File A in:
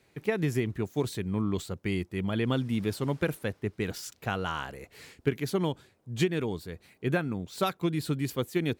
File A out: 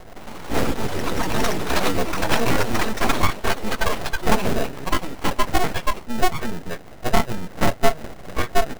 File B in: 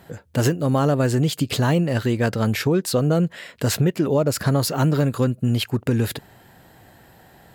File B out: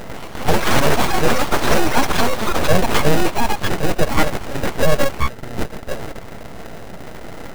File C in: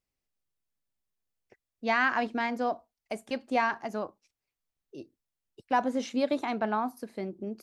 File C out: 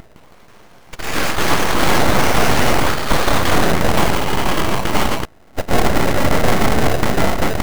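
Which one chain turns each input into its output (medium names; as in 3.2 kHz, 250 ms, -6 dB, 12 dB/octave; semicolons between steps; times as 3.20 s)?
spectral levelling over time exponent 0.2; de-hum 137.5 Hz, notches 6; spectral noise reduction 29 dB; treble shelf 5.6 kHz -5 dB; in parallel at +0.5 dB: compression, threshold -29 dBFS; on the sum: sample-rate reducer 1.1 kHz, jitter 0%; saturation -12 dBFS; small resonant body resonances 330/1700 Hz, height 10 dB, ringing for 55 ms; ever faster or slower copies 161 ms, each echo +7 st, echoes 3; full-wave rectifier; loudness maximiser +7.5 dB; trim -1 dB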